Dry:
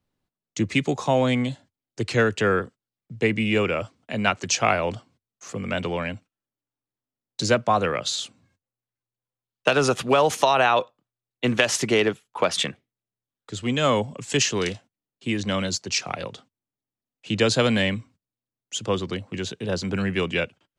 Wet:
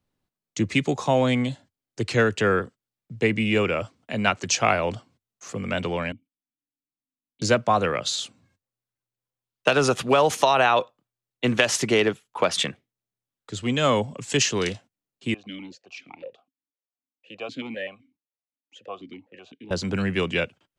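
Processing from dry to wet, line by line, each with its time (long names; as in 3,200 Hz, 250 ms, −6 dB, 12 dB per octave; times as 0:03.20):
0:06.12–0:07.42: formant resonators in series i
0:15.34–0:19.71: formant filter that steps through the vowels 7.9 Hz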